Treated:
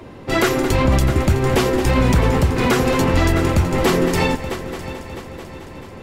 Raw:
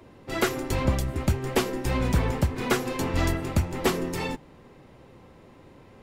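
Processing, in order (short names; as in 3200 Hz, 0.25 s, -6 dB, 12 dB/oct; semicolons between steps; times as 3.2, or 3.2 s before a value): high shelf 7200 Hz -4.5 dB; on a send: multi-head echo 0.219 s, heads first and third, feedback 60%, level -16.5 dB; on the sum: maximiser +18.5 dB; gain -6 dB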